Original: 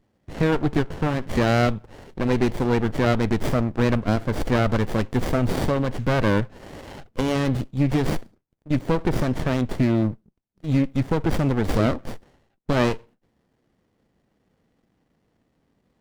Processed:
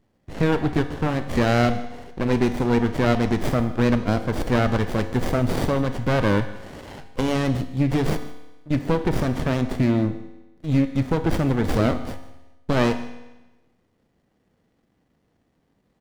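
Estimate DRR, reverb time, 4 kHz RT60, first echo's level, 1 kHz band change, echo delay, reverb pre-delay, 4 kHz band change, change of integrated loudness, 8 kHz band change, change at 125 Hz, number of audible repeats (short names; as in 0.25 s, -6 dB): 9.5 dB, 1.1 s, 1.0 s, -20.5 dB, +0.5 dB, 0.154 s, 22 ms, +0.5 dB, +0.5 dB, +0.5 dB, 0.0 dB, 1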